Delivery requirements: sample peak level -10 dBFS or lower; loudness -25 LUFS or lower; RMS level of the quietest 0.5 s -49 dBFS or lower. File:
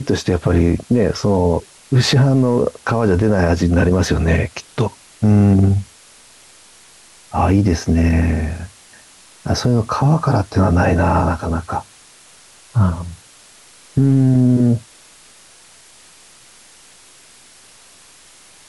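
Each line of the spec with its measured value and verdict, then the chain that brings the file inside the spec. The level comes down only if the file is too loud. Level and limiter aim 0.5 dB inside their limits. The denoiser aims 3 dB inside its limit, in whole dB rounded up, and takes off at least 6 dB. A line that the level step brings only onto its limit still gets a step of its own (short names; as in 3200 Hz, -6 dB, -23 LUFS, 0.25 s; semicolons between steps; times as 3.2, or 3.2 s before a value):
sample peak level -5.0 dBFS: fail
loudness -16.5 LUFS: fail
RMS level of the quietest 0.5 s -46 dBFS: fail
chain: gain -9 dB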